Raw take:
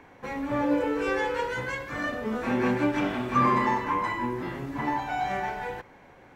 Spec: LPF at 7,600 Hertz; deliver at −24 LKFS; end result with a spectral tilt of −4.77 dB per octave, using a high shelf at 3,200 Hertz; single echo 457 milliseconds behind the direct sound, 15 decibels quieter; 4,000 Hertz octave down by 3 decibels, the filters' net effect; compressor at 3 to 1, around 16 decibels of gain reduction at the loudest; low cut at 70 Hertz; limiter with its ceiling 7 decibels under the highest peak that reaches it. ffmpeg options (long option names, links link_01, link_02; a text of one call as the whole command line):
ffmpeg -i in.wav -af "highpass=70,lowpass=7600,highshelf=frequency=3200:gain=4,equalizer=frequency=4000:width_type=o:gain=-7,acompressor=threshold=-41dB:ratio=3,alimiter=level_in=9.5dB:limit=-24dB:level=0:latency=1,volume=-9.5dB,aecho=1:1:457:0.178,volume=18dB" out.wav